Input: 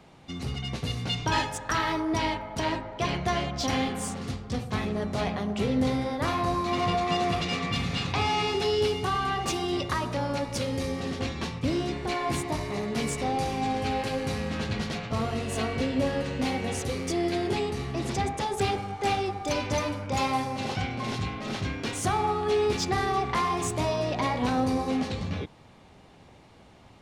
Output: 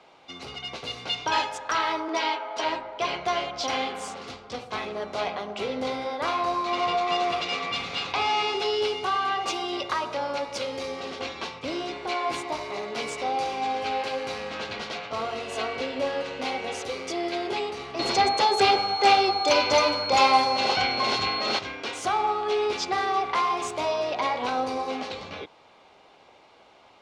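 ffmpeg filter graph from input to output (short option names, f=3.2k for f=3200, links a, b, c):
-filter_complex "[0:a]asettb=1/sr,asplit=3[a][b][c];[a]atrim=end=2.084[d];[b]atrim=start=2.08:end=2.64,asetpts=PTS-STARTPTS,afade=t=in:d=0.004:c=qsin,afade=t=out:st=0.556:d=0.004:c=qsin,acompressor=mode=upward:threshold=-31dB:ratio=2.5:attack=3.2:release=140:knee=2.83:detection=peak,highpass=330,lowpass=7.9k,asplit=2[e][f];[f]adelay=12,volume=-2dB[g];[e][g]amix=inputs=2:normalize=0,atrim=end_sample=24696[h];[c]atrim=start=2.636[i];[d][h]acrossfade=d=0.004:c1=hsin:c2=qsin[j];[j][i]acrossfade=d=0.004:c1=qsin:c2=hsin,asettb=1/sr,asplit=3[k][l][m];[k]atrim=end=17.994[n];[l]atrim=start=17.99:end=21.59,asetpts=PTS-STARTPTS,afade=t=in:d=0.004:c=qsin,afade=t=out:st=3.596:d=0.004:c=qsin,acontrast=76,aeval=exprs='val(0)+0.0282*sin(2*PI*4300*n/s)':c=same[o];[m]atrim=start=21.586[p];[n][o]acrossfade=d=0.004:c1=hsin:c2=qsin[q];[q][p]acrossfade=d=0.004:c1=qsin:c2=hsin,acrossover=split=380 6200:gain=0.0891 1 0.158[r][s][t];[r][s][t]amix=inputs=3:normalize=0,bandreject=f=1.8k:w=8,volume=3dB"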